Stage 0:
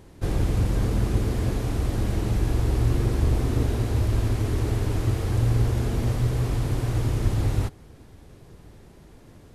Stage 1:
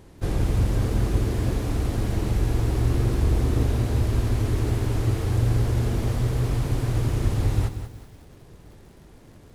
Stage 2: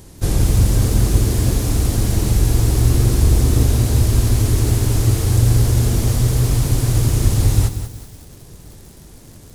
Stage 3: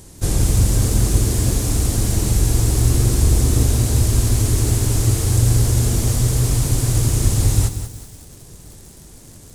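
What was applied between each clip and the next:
lo-fi delay 0.187 s, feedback 35%, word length 8-bit, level -10 dB
tone controls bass +4 dB, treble +14 dB; gain +4 dB
bell 8000 Hz +6.5 dB 1 oct; gain -1.5 dB

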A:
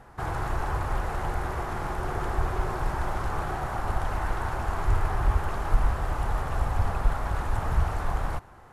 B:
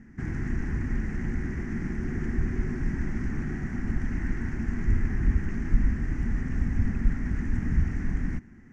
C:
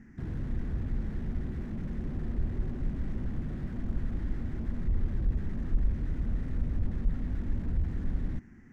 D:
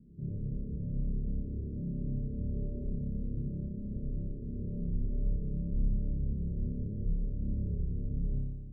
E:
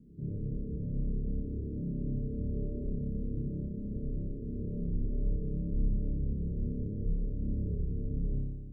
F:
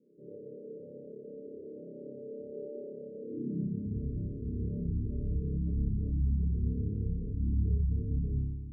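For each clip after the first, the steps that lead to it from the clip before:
EQ curve 120 Hz 0 dB, 240 Hz +15 dB, 550 Hz -19 dB, 820 Hz -21 dB, 1200 Hz -19 dB, 1900 Hz +3 dB, 3800 Hz -21 dB, 6000 Hz -2 dB, 11000 Hz -26 dB
slew limiter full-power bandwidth 4.7 Hz; gain -2.5 dB
rippled Chebyshev low-pass 600 Hz, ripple 9 dB; on a send: flutter echo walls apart 5 m, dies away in 1.3 s; on the sum: gain -1.5 dB
small resonant body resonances 300/440 Hz, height 7 dB
high-pass sweep 510 Hz -> 66 Hz, 3.18–4.05; spectral gate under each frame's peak -25 dB strong

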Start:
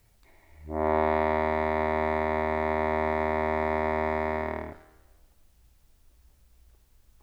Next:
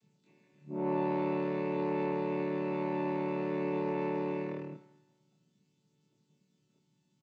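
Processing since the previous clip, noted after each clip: chord vocoder major triad, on D3; band shelf 950 Hz -10 dB 2.6 oct; doubler 25 ms -2 dB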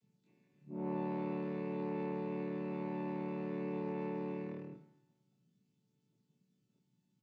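low shelf 250 Hz +8 dB; on a send at -14 dB: reverb RT60 0.45 s, pre-delay 3 ms; on the sum: gain -9 dB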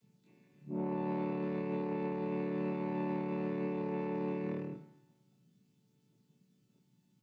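limiter -34.5 dBFS, peak gain reduction 6.5 dB; gain +6.5 dB

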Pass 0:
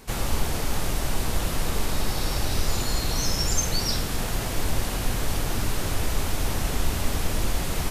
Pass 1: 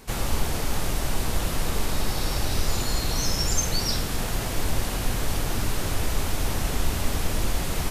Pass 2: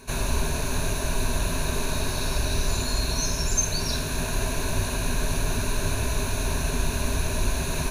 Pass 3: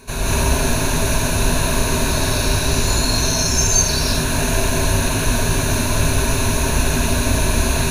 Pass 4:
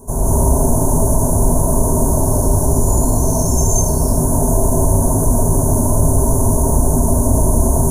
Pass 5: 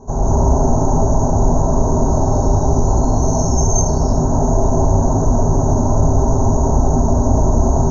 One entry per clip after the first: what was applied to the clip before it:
nothing audible
ripple EQ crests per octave 1.5, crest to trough 12 dB; in parallel at -2 dB: vocal rider 0.5 s; on the sum: gain -6.5 dB
non-linear reverb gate 0.24 s rising, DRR -5.5 dB; gain +3 dB
Chebyshev band-stop 880–7700 Hz, order 3; in parallel at +1 dB: limiter -12.5 dBFS, peak gain reduction 7 dB
small resonant body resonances 800/1300/1900/3800 Hz, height 12 dB, ringing for 70 ms; AC-3 48 kbps 48000 Hz

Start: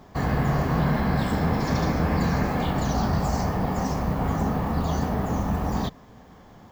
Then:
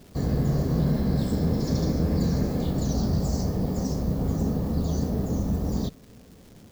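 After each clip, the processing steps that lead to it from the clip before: band shelf 1500 Hz -14.5 dB 2.4 oct; crackle 600/s -45 dBFS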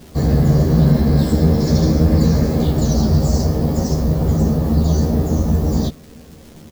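doubler 13 ms -2.5 dB; gain +7.5 dB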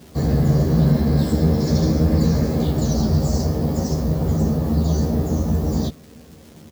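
HPF 57 Hz; gain -3 dB

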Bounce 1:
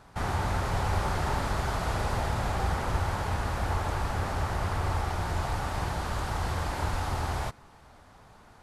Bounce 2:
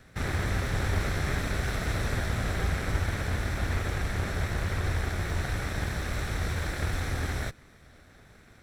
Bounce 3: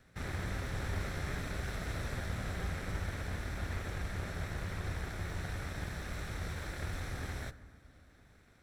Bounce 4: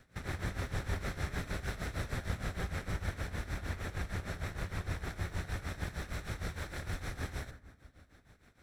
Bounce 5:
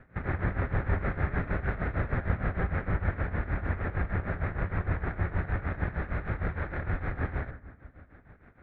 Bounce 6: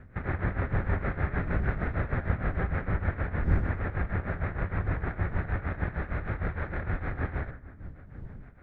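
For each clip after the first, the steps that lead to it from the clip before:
minimum comb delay 0.52 ms; gain +1 dB
reverb RT60 2.1 s, pre-delay 3 ms, DRR 14 dB; gain -9 dB
tremolo 6.5 Hz, depth 79%; gain +3.5 dB
LPF 2000 Hz 24 dB/oct; gain +8 dB
wind noise 110 Hz -38 dBFS

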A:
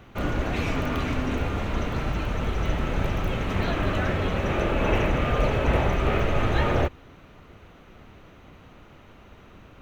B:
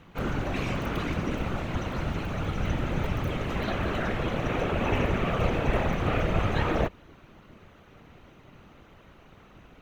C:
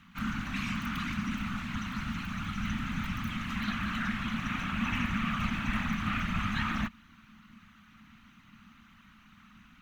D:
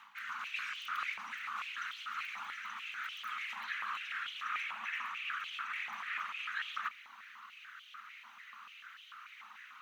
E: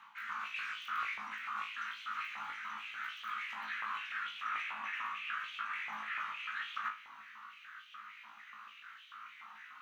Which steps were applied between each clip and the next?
whisperiser; gain -3 dB
EQ curve 150 Hz 0 dB, 220 Hz +13 dB, 440 Hz -27 dB, 1200 Hz +8 dB; gain -8.5 dB
reverse; compressor 5:1, threshold -42 dBFS, peak gain reduction 14.5 dB; reverse; stepped high-pass 6.8 Hz 890–3100 Hz; gain +2 dB
high shelf 2100 Hz -9 dB; on a send: flutter echo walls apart 3.2 m, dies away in 0.27 s; on the sum: gain +1.5 dB

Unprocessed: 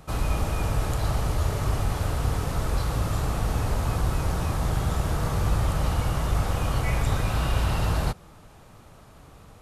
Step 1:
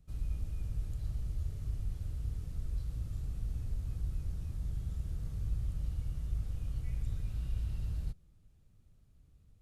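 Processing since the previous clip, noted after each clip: passive tone stack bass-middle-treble 10-0-1; gain -3 dB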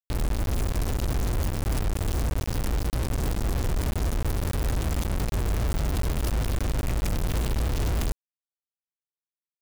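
companded quantiser 2-bit; gain +2.5 dB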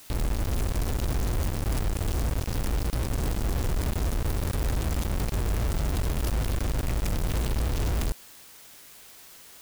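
requantised 8-bit, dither triangular; gain -1 dB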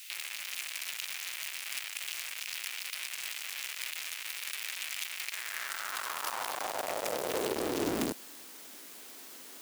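high-pass sweep 2400 Hz -> 270 Hz, 5.19–8.02

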